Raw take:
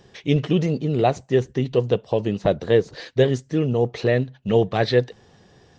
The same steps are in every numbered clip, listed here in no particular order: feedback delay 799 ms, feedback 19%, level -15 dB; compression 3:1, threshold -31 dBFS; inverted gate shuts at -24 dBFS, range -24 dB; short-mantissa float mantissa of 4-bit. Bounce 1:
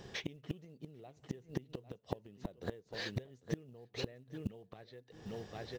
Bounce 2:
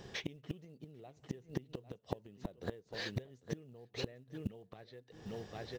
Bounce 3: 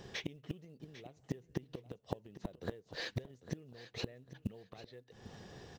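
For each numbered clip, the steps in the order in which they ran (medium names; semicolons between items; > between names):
compression > feedback delay > short-mantissa float > inverted gate; compression > feedback delay > inverted gate > short-mantissa float; compression > inverted gate > short-mantissa float > feedback delay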